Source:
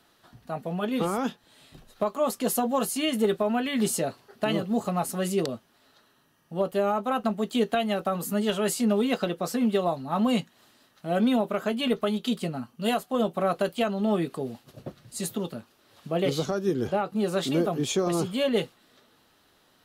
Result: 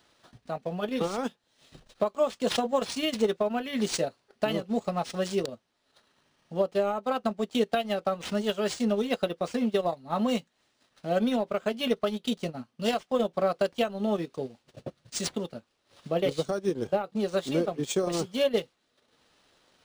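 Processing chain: bell 530 Hz +5 dB 0.52 oct; transient shaper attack +3 dB, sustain -11 dB; high shelf 4500 Hz +11 dB; decimation joined by straight lines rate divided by 3×; gain -4.5 dB

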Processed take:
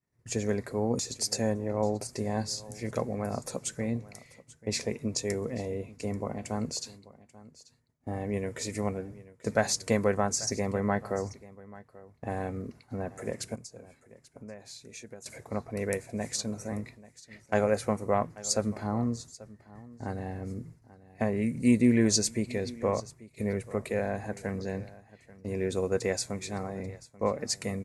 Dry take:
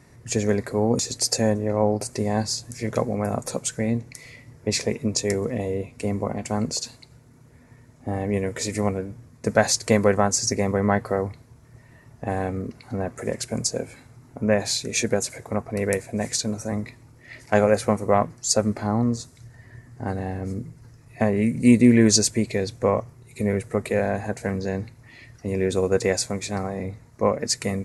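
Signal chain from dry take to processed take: expander -38 dBFS; 13.55–15.26 compressor 2.5:1, threshold -43 dBFS, peak gain reduction 18.5 dB; echo 0.837 s -19.5 dB; gain -7.5 dB

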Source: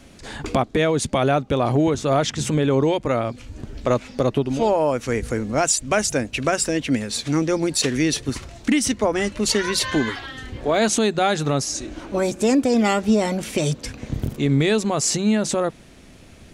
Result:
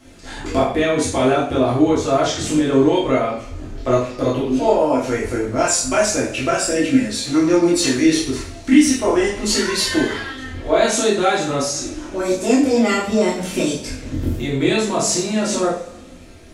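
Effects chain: chorus voices 6, 0.27 Hz, delay 25 ms, depth 2.5 ms; notches 50/100/150/200 Hz; two-slope reverb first 0.46 s, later 1.6 s, DRR -4.5 dB

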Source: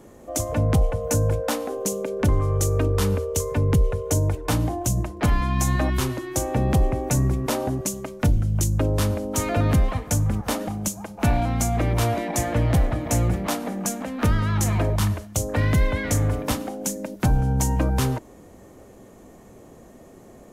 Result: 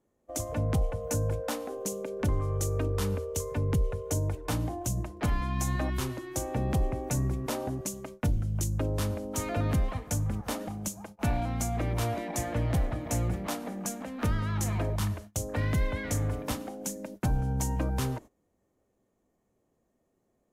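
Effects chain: gate -36 dBFS, range -20 dB; gain -8 dB

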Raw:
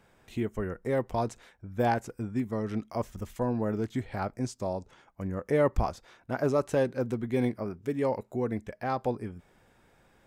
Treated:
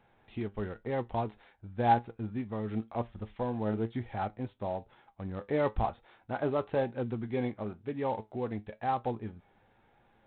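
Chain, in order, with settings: flange 1 Hz, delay 8.3 ms, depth 1.8 ms, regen +69%; bell 810 Hz +8 dB 0.25 oct; IMA ADPCM 32 kbps 8000 Hz

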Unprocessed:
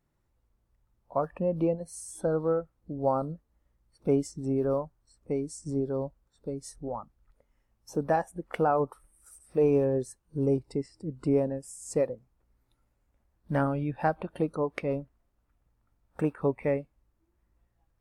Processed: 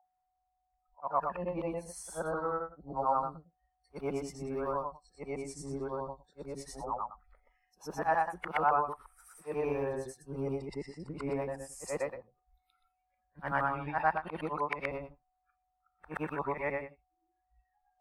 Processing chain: short-time reversal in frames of 0.248 s; whine 740 Hz -64 dBFS; ten-band EQ 125 Hz -8 dB, 250 Hz -8 dB, 500 Hz -7 dB, 1000 Hz +9 dB, 2000 Hz +6 dB, 8000 Hz -7 dB; in parallel at +3 dB: compressor, threshold -42 dBFS, peak gain reduction 18.5 dB; on the sum: spectral noise reduction 22 dB; gain -2 dB

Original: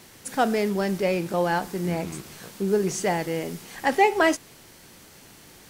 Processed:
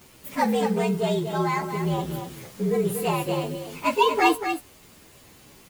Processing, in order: inharmonic rescaling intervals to 116%; 0.55–1.69 notch comb 580 Hz; echo 0.236 s -7.5 dB; gain +2.5 dB

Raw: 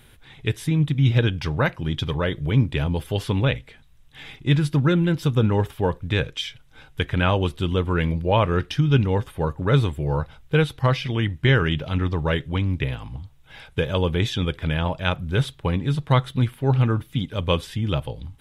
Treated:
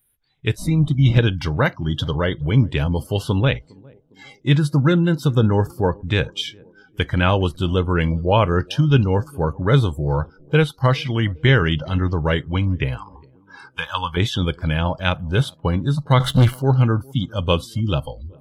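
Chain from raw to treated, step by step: 0.57–1.19 wind noise 170 Hz -28 dBFS; 12.97–14.17 resonant low shelf 740 Hz -9.5 dB, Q 3; 16.2–16.62 sample leveller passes 3; spectral noise reduction 27 dB; narrowing echo 0.407 s, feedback 56%, band-pass 310 Hz, level -24 dB; gain +3 dB

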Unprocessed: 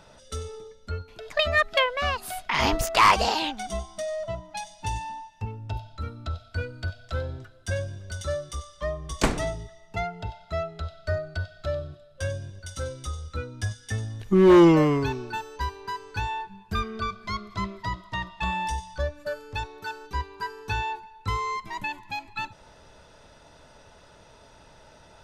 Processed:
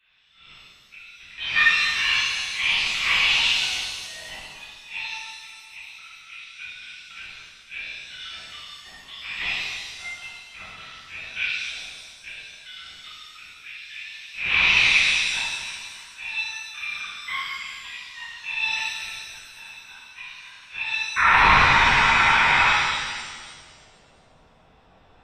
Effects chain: rattling part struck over -26 dBFS, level -20 dBFS; gate -40 dBFS, range -11 dB; HPF 100 Hz; in parallel at -1 dB: vocal rider within 4 dB 2 s; on the sum: auto swell 0.205 s; painted sound noise, 21.16–22.69, 750–2600 Hz -19 dBFS; high-pass sweep 2400 Hz -> 180 Hz, 21.05–21.69; LPC vocoder at 8 kHz whisper; shimmer reverb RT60 1.6 s, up +7 st, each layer -8 dB, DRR -9 dB; gain -9 dB

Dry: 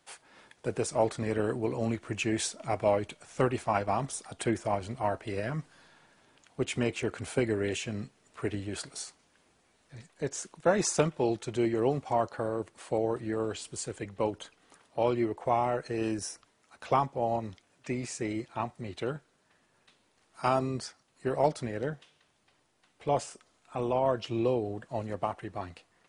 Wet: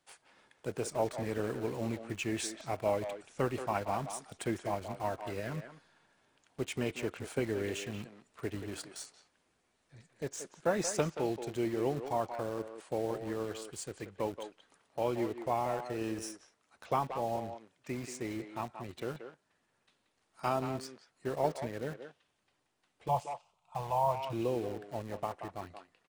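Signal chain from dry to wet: 23.08–24.33 EQ curve 100 Hz 0 dB, 160 Hz +6 dB, 270 Hz -23 dB, 920 Hz +10 dB, 1700 Hz -18 dB, 2600 Hz 0 dB, 5000 Hz -6 dB; in parallel at -7 dB: bit-crush 6-bit; on the sum: speakerphone echo 0.18 s, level -8 dB; gain -8.5 dB

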